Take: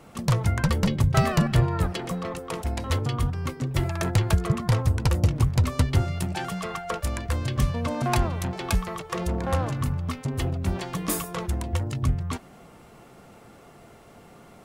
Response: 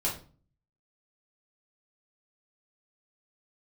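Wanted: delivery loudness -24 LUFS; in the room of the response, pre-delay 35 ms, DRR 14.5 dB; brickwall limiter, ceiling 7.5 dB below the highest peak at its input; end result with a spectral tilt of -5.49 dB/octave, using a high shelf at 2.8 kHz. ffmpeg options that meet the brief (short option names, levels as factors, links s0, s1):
-filter_complex "[0:a]highshelf=f=2800:g=4,alimiter=limit=0.178:level=0:latency=1,asplit=2[s0][s1];[1:a]atrim=start_sample=2205,adelay=35[s2];[s1][s2]afir=irnorm=-1:irlink=0,volume=0.0891[s3];[s0][s3]amix=inputs=2:normalize=0,volume=1.5"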